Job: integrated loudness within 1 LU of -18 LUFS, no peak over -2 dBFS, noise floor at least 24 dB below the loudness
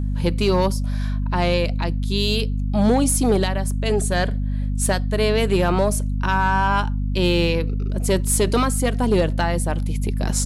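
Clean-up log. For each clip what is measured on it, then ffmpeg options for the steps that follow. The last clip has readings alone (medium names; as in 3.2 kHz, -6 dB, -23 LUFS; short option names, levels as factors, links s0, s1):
hum 50 Hz; highest harmonic 250 Hz; hum level -20 dBFS; loudness -21.0 LUFS; peak level -8.0 dBFS; loudness target -18.0 LUFS
-> -af "bandreject=f=50:t=h:w=4,bandreject=f=100:t=h:w=4,bandreject=f=150:t=h:w=4,bandreject=f=200:t=h:w=4,bandreject=f=250:t=h:w=4"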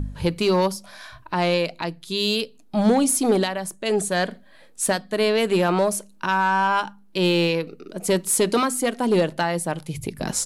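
hum not found; loudness -22.5 LUFS; peak level -9.5 dBFS; loudness target -18.0 LUFS
-> -af "volume=1.68"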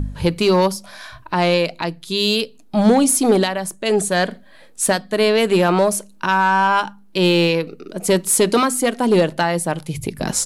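loudness -18.0 LUFS; peak level -5.0 dBFS; noise floor -46 dBFS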